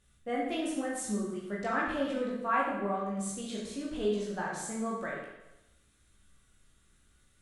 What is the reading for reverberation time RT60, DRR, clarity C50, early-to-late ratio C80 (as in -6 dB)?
0.90 s, -5.0 dB, 1.5 dB, 4.0 dB